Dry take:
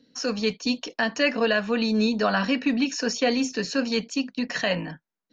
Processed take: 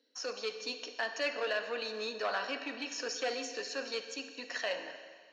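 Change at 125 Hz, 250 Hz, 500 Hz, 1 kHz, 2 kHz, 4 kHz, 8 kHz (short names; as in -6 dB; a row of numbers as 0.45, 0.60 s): under -30 dB, -23.5 dB, -10.5 dB, -9.5 dB, -9.5 dB, -9.0 dB, n/a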